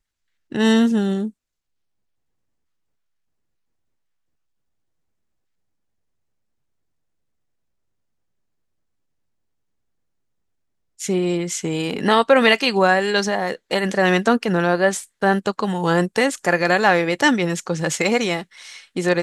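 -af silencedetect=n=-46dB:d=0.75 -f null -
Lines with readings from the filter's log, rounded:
silence_start: 1.31
silence_end: 10.99 | silence_duration: 9.68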